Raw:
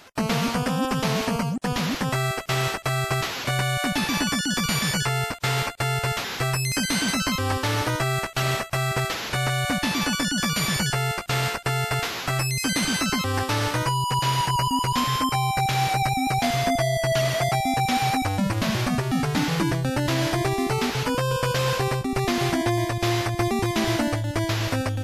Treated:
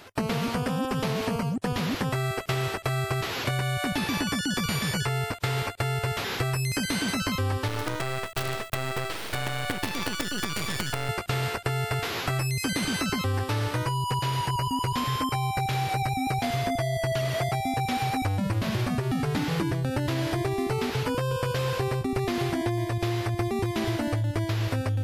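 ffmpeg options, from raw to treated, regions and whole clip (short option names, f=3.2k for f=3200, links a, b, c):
-filter_complex "[0:a]asettb=1/sr,asplit=3[a][b][c];[a]atrim=end=7.684[d];[b]atrim=start=7.68:end=11.09,asetpts=PTS-STARTPTS,afade=t=in:d=0.004:c=qsin,afade=t=out:st=3.406:d=0.004:c=qsin,highpass=f=91:p=1,acrossover=split=9000[e][f];[f]acompressor=threshold=-48dB:ratio=4:attack=1:release=60[g];[e][g]amix=inputs=2:normalize=0,acrusher=bits=4:dc=4:mix=0:aa=0.000001[h];[c]atrim=start=11.086[i];[d][h]acrossfade=d=0.004:c1=hsin:c2=qsin[j];[j][i]acrossfade=d=0.004:c1=qsin:c2=hsin,equalizer=f=100:t=o:w=0.67:g=8,equalizer=f=400:t=o:w=0.67:g=5,equalizer=f=6.3k:t=o:w=0.67:g=-4,acompressor=threshold=-24dB:ratio=6"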